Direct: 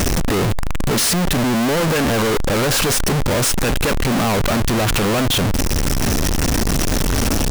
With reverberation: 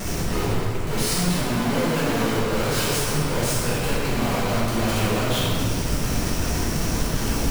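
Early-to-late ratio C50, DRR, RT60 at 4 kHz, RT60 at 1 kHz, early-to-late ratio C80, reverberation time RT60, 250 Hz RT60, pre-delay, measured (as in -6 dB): -2.5 dB, -11.0 dB, 1.6 s, 2.1 s, -0.5 dB, 2.1 s, 2.2 s, 4 ms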